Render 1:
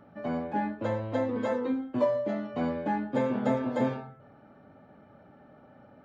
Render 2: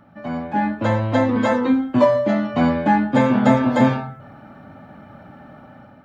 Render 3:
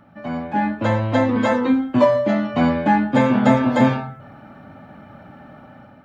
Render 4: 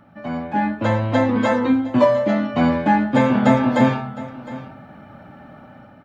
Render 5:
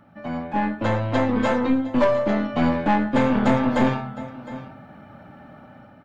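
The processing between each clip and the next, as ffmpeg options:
ffmpeg -i in.wav -af "equalizer=frequency=440:width_type=o:width=0.8:gain=-9.5,dynaudnorm=framelen=250:gausssize=5:maxgain=9dB,volume=6dB" out.wav
ffmpeg -i in.wav -af "equalizer=frequency=2600:width_type=o:width=0.77:gain=2" out.wav
ffmpeg -i in.wav -af "aecho=1:1:711:0.141" out.wav
ffmpeg -i in.wav -af "aeval=exprs='(tanh(3.98*val(0)+0.55)-tanh(0.55))/3.98':channel_layout=same" out.wav

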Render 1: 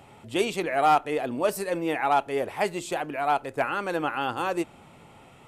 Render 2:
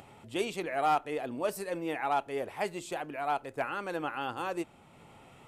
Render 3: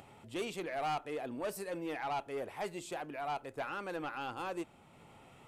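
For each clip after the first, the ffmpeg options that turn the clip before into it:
ffmpeg -i in.wav -af "acompressor=mode=upward:threshold=-41dB:ratio=2.5,volume=-7dB" out.wav
ffmpeg -i in.wav -af "asoftclip=type=tanh:threshold=-28dB,volume=-3dB" out.wav

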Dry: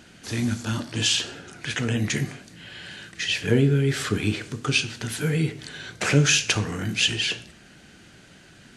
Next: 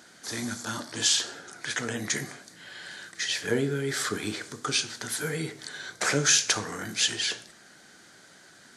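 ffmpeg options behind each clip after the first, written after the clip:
ffmpeg -i in.wav -af "highpass=frequency=810:poles=1,equalizer=frequency=2700:width_type=o:width=0.49:gain=-13.5,volume=2.5dB" out.wav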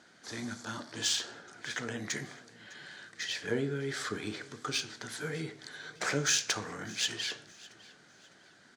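ffmpeg -i in.wav -af "adynamicsmooth=sensitivity=1.5:basefreq=6500,aecho=1:1:605|1210|1815:0.0891|0.0312|0.0109,volume=-5.5dB" out.wav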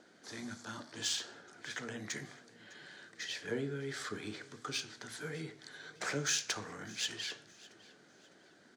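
ffmpeg -i in.wav -filter_complex "[0:a]bandreject=frequency=60:width_type=h:width=6,bandreject=frequency=120:width_type=h:width=6,acrossover=split=250|560|3000[link_01][link_02][link_03][link_04];[link_02]acompressor=mode=upward:threshold=-52dB:ratio=2.5[link_05];[link_01][link_05][link_03][link_04]amix=inputs=4:normalize=0,volume=-5dB" out.wav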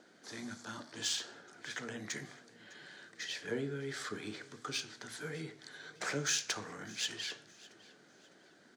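ffmpeg -i in.wav -af "equalizer=frequency=81:width_type=o:width=0.55:gain=-6.5" out.wav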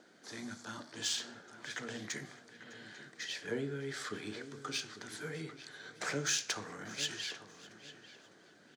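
ffmpeg -i in.wav -filter_complex "[0:a]asplit=2[link_01][link_02];[link_02]adelay=845,lowpass=frequency=2200:poles=1,volume=-12dB,asplit=2[link_03][link_04];[link_04]adelay=845,lowpass=frequency=2200:poles=1,volume=0.25,asplit=2[link_05][link_06];[link_06]adelay=845,lowpass=frequency=2200:poles=1,volume=0.25[link_07];[link_01][link_03][link_05][link_07]amix=inputs=4:normalize=0" out.wav

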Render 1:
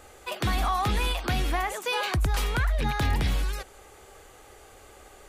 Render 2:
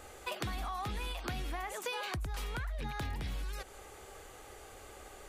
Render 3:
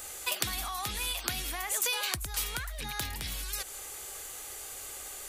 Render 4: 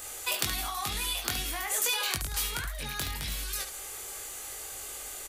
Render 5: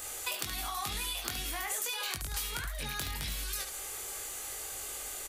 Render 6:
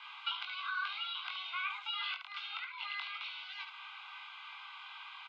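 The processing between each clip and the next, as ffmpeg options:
ffmpeg -i in.wav -af "acompressor=threshold=-34dB:ratio=10,volume=-1dB" out.wav
ffmpeg -i in.wav -af "crystalizer=i=8:c=0,volume=-2.5dB" out.wav
ffmpeg -i in.wav -af "aecho=1:1:21|72:0.631|0.398" out.wav
ffmpeg -i in.wav -af "acompressor=threshold=-32dB:ratio=6" out.wav
ffmpeg -i in.wav -af "asuperstop=centerf=1400:order=8:qfactor=3.4,highpass=frequency=570:width_type=q:width=0.5412,highpass=frequency=570:width_type=q:width=1.307,lowpass=frequency=3100:width_type=q:width=0.5176,lowpass=frequency=3100:width_type=q:width=0.7071,lowpass=frequency=3100:width_type=q:width=1.932,afreqshift=380,volume=2dB" out.wav

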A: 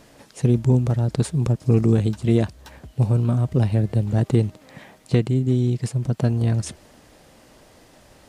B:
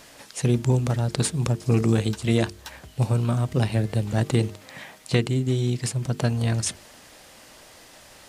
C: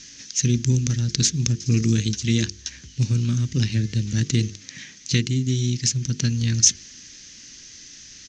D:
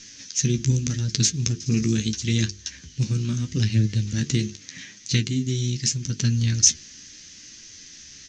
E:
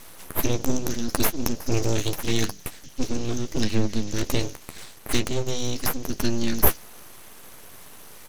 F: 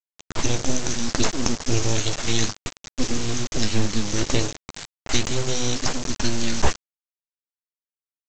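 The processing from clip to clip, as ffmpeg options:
ffmpeg -i in.wav -af "tiltshelf=frequency=840:gain=-5.5,bandreject=frequency=50:width_type=h:width=6,bandreject=frequency=100:width_type=h:width=6,bandreject=frequency=150:width_type=h:width=6,bandreject=frequency=200:width_type=h:width=6,bandreject=frequency=250:width_type=h:width=6,bandreject=frequency=300:width_type=h:width=6,bandreject=frequency=350:width_type=h:width=6,bandreject=frequency=400:width_type=h:width=6,bandreject=frequency=450:width_type=h:width=6,volume=2dB" out.wav
ffmpeg -i in.wav -af "equalizer=frequency=6200:width=3.2:gain=7.5,adynamicsmooth=sensitivity=4:basefreq=7000,firequalizer=gain_entry='entry(270,0);entry(670,-27);entry(1700,-2);entry(6300,12);entry(9600,-20)':delay=0.05:min_phase=1,volume=1.5dB" out.wav
ffmpeg -i in.wav -af "flanger=delay=9.2:depth=5.2:regen=39:speed=0.79:shape=sinusoidal,volume=3dB" out.wav
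ffmpeg -i in.wav -af "aeval=exprs='abs(val(0))':channel_layout=same,volume=1.5dB" out.wav
ffmpeg -i in.wav -af "aphaser=in_gain=1:out_gain=1:delay=1.5:decay=0.25:speed=0.7:type=sinusoidal,crystalizer=i=1.5:c=0,aresample=16000,acrusher=bits=4:mix=0:aa=0.000001,aresample=44100" out.wav

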